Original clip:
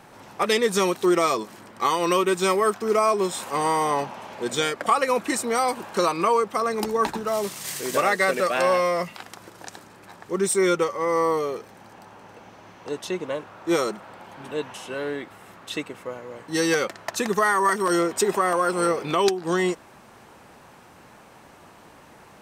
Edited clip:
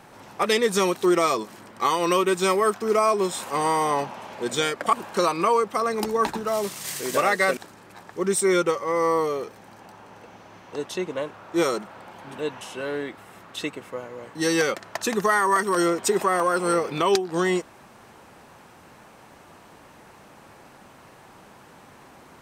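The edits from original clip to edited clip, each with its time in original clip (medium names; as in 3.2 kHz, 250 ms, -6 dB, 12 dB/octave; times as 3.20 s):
4.93–5.73 s: delete
8.37–9.70 s: delete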